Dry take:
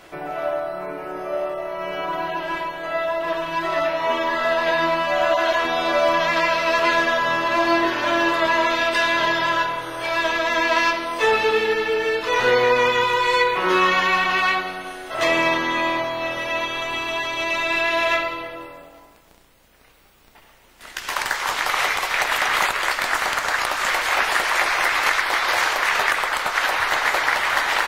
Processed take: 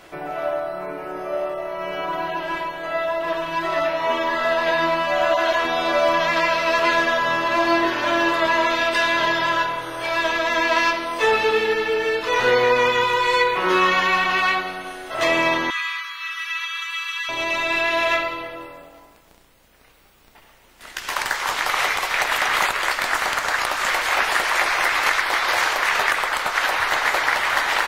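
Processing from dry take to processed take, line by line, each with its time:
0:15.70–0:17.29: Butterworth high-pass 1,100 Hz 96 dB per octave

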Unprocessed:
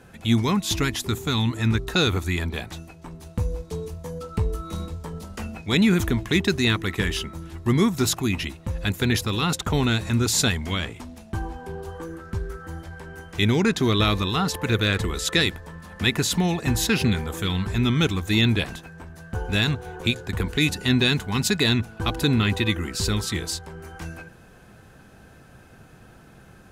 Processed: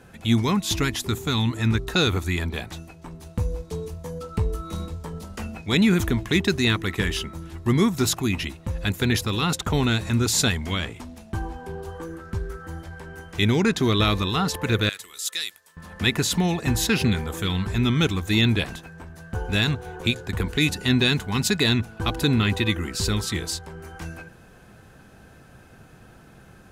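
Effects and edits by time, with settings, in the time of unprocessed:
0:14.89–0:15.77: first difference

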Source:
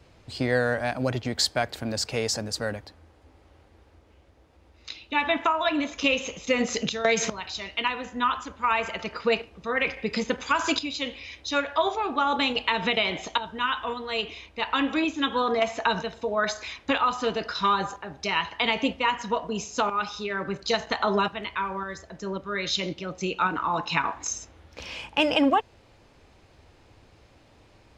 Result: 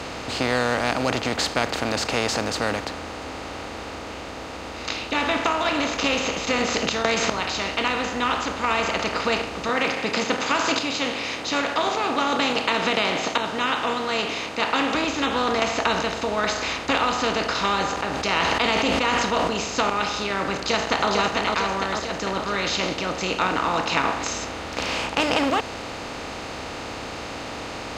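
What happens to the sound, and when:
0:09.69–0:14.95: high-pass filter 140 Hz 24 dB per octave
0:17.95–0:19.57: level that may fall only so fast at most 41 dB per second
0:20.54–0:21.09: delay throw 450 ms, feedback 40%, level −6.5 dB
whole clip: compressor on every frequency bin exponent 0.4; level −5 dB

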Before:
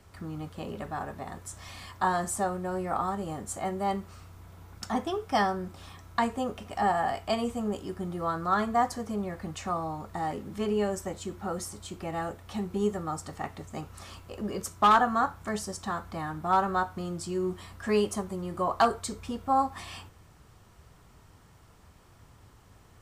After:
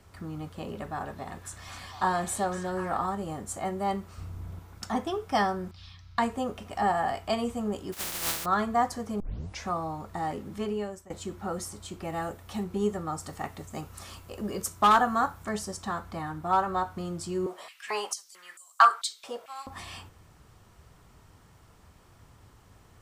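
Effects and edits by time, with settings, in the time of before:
0:00.80–0:03.06: echo through a band-pass that steps 252 ms, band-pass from 4,200 Hz, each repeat −0.7 octaves, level −2 dB
0:04.18–0:04.59: low-shelf EQ 360 Hz +11 dB
0:05.71–0:06.18: drawn EQ curve 110 Hz 0 dB, 430 Hz −21 dB, 4,800 Hz +5 dB, 8,100 Hz −19 dB
0:07.92–0:08.44: compressing power law on the bin magnitudes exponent 0.12
0:09.20: tape start 0.47 s
0:10.51–0:11.10: fade out, to −20 dB
0:12.04–0:12.64: high-shelf EQ 9,800 Hz +8 dB
0:13.20–0:15.45: high-shelf EQ 8,000 Hz +8.5 dB
0:16.19–0:16.85: notch comb filter 210 Hz
0:17.46–0:19.67: high-pass on a step sequencer 4.5 Hz 590–7,600 Hz

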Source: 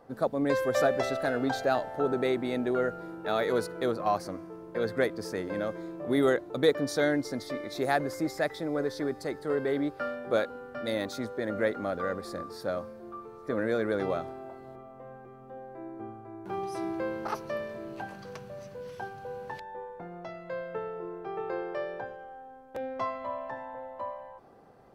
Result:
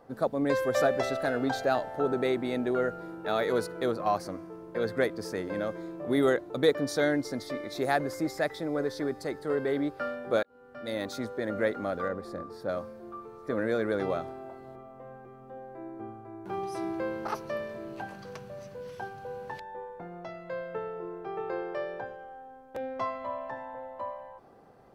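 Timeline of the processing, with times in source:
0:10.43–0:11.12: fade in
0:12.08–0:12.69: high-shelf EQ 2,100 Hz −10 dB

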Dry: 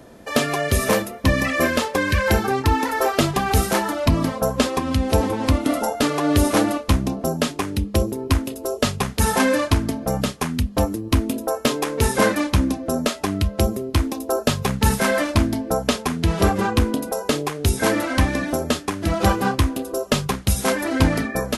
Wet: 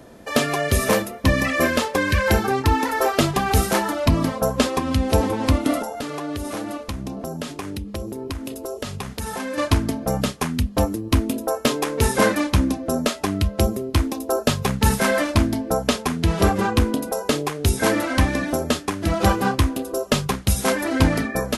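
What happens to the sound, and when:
0:05.82–0:09.58: downward compressor 5 to 1, threshold −26 dBFS

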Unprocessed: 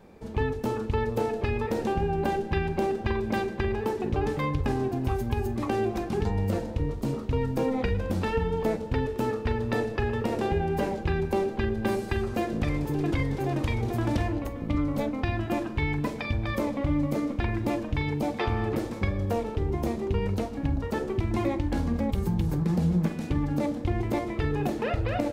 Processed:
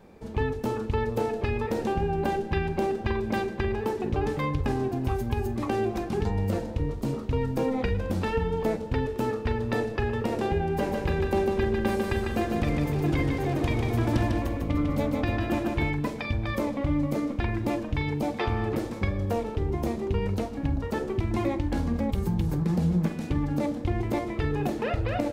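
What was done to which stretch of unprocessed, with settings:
0:10.74–0:15.91: repeating echo 149 ms, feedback 47%, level −4 dB

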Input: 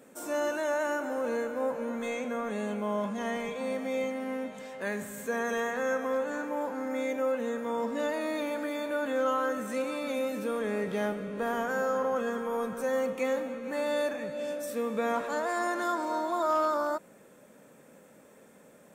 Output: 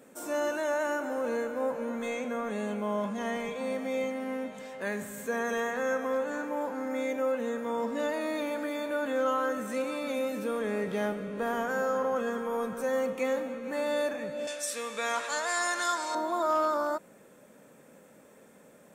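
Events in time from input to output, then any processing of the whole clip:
0:14.47–0:16.15: meter weighting curve ITU-R 468

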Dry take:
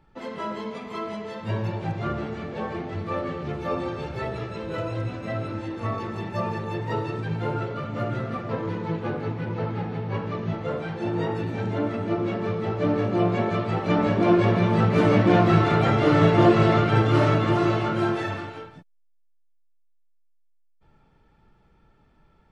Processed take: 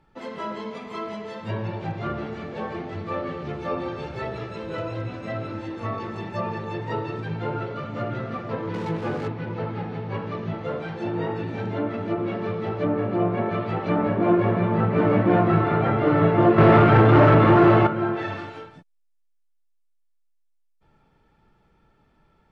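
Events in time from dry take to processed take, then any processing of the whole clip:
0:08.74–0:09.28: converter with a step at zero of −32.5 dBFS
0:16.58–0:17.87: leveller curve on the samples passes 3
whole clip: treble cut that deepens with the level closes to 1,900 Hz, closed at −19 dBFS; low-shelf EQ 120 Hz −4.5 dB

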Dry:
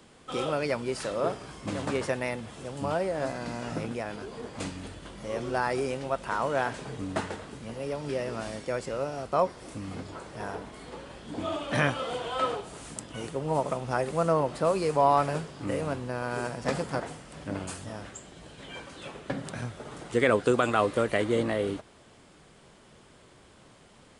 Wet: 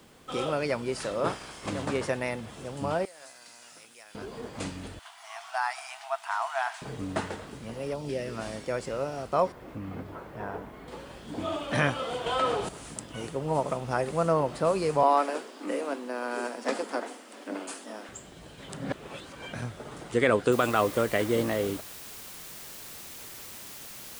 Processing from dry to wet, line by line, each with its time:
0:01.24–0:01.68: ceiling on every frequency bin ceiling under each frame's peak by 15 dB
0:03.05–0:04.15: first difference
0:04.99–0:06.82: linear-phase brick-wall high-pass 640 Hz
0:07.93–0:08.37: parametric band 2,100 Hz → 670 Hz −11.5 dB 0.83 octaves
0:09.52–0:10.88: low-pass filter 2,200 Hz
0:12.26–0:12.69: envelope flattener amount 50%
0:15.03–0:18.09: Butterworth high-pass 220 Hz 72 dB per octave
0:18.69–0:19.53: reverse
0:20.52: noise floor change −69 dB −44 dB

